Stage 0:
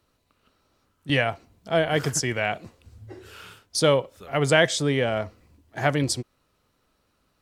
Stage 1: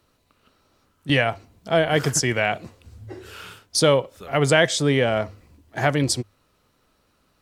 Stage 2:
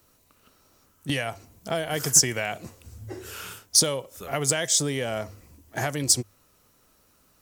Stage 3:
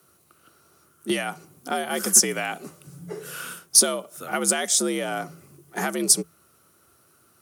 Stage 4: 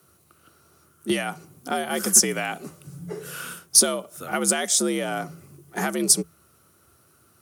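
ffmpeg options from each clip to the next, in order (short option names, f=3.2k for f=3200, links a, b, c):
-filter_complex "[0:a]bandreject=f=50:t=h:w=6,bandreject=f=100:t=h:w=6,asplit=2[a][b];[b]alimiter=limit=-12.5dB:level=0:latency=1:release=395,volume=1dB[c];[a][c]amix=inputs=2:normalize=0,volume=-2dB"
-filter_complex "[0:a]acrossover=split=4200[a][b];[a]acompressor=threshold=-25dB:ratio=6[c];[c][b]amix=inputs=2:normalize=0,aexciter=amount=1.8:drive=8.6:freq=5.6k"
-af "superequalizer=6b=1.78:10b=2:16b=2.24,afreqshift=65"
-af "lowshelf=f=110:g=10.5"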